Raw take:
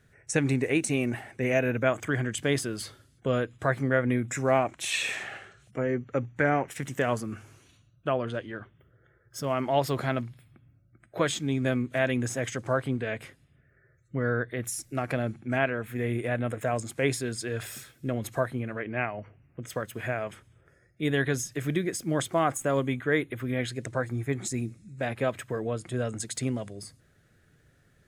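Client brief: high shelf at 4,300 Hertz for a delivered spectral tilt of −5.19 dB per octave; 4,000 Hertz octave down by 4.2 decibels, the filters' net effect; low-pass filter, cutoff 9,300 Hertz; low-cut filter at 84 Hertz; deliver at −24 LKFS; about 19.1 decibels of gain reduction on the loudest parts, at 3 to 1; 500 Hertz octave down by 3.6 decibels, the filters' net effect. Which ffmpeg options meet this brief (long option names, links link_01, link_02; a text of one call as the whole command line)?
ffmpeg -i in.wav -af "highpass=84,lowpass=9300,equalizer=frequency=500:width_type=o:gain=-4.5,equalizer=frequency=4000:width_type=o:gain=-3,highshelf=frequency=4300:gain=-4.5,acompressor=threshold=-49dB:ratio=3,volume=24dB" out.wav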